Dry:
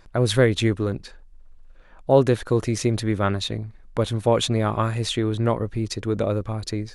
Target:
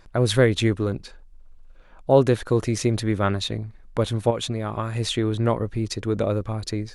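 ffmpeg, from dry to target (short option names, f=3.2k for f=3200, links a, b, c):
-filter_complex "[0:a]asettb=1/sr,asplit=3[a][b][c];[a]atrim=end=0.844[d];[b]atrim=start=0.84:end=2.28,asetpts=PTS-STARTPTS,afade=t=in:d=0.004:c=qsin,afade=t=out:st=1.436:d=0.004:c=qsin,bandreject=f=1.8k:w=10[e];[c]atrim=start=2.276[f];[d][e]acrossfade=d=0.004:c1=hsin:c2=qsin[g];[g][f]acrossfade=d=0.004:c1=qsin:c2=hsin,asettb=1/sr,asplit=3[h][i][j];[h]atrim=end=4.304[k];[i]atrim=start=4.3:end=4.95,asetpts=PTS-STARTPTS,afade=t=in:d=0.004:c=qsin,afade=t=out:st=0.646:d=0.004:c=qsin,acompressor=threshold=-23dB:ratio=6[l];[j]atrim=start=4.946[m];[k][l]acrossfade=d=0.004:c1=hsin:c2=qsin[n];[n][m]acrossfade=d=0.004:c1=qsin:c2=hsin"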